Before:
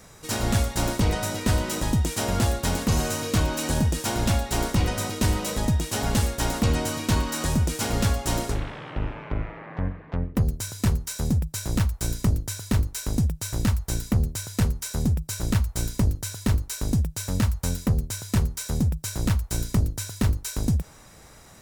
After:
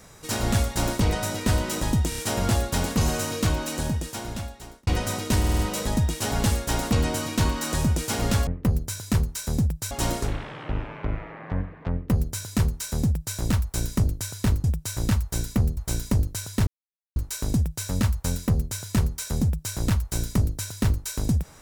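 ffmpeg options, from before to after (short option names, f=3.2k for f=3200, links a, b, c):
-filter_complex "[0:a]asplit=14[a][b][c][d][e][f][g][h][i][j][k][l][m][n];[a]atrim=end=2.122[o];[b]atrim=start=2.088:end=2.122[p];[c]atrim=start=2.088:end=2.122[q];[d]atrim=start=2.088:end=4.78,asetpts=PTS-STARTPTS,afade=t=out:st=1.152:d=1.54[r];[e]atrim=start=4.78:end=5.352,asetpts=PTS-STARTPTS,afade=t=in:d=0.004:c=hsin[s];[f]atrim=start=5.298:end=5.352[t];[g]atrim=start=5.298:end=5.352[u];[h]atrim=start=5.298:end=5.352[v];[i]atrim=start=5.298:end=8.182[w];[j]atrim=start=10.188:end=11.632[x];[k]atrim=start=8.178:end=12.912[y];[l]atrim=start=13.198:end=14.332[z];[m]atrim=start=15.648:end=16.55,asetpts=PTS-STARTPTS,afade=t=out:st=0.898:d=0.004:c=hsin,apad=pad_dur=0.49[aa];[n]atrim=start=16.55,asetpts=PTS-STARTPTS,afade=t=in:d=0.004:c=hsin[ab];[o][p]acrossfade=d=0.004:c1=hsin:c2=hsin[ac];[ac][q]acrossfade=d=0.004:c1=hsin:c2=hsin[ad];[r][s]concat=n=2:v=0:a=1[ae];[ad][ae]acrossfade=d=0.004:c1=hsin:c2=hsin[af];[af][t]acrossfade=d=0.004:c1=hsin:c2=hsin[ag];[ag][u]acrossfade=d=0.004:c1=hsin:c2=hsin[ah];[ah][v]acrossfade=d=0.004:c1=hsin:c2=hsin[ai];[ai][w]acrossfade=d=0.004:c1=hsin:c2=hsin[aj];[aj][x]acrossfade=d=0.004:c1=hsin:c2=hsin[ak];[ak][y]acrossfade=d=0.004:c1=hsin:c2=hsin[al];[al][z]acrossfade=d=0.004:c1=hsin:c2=hsin[am];[aa][ab]concat=n=2:v=0:a=1[an];[am][an]acrossfade=d=0.004:c1=hsin:c2=hsin"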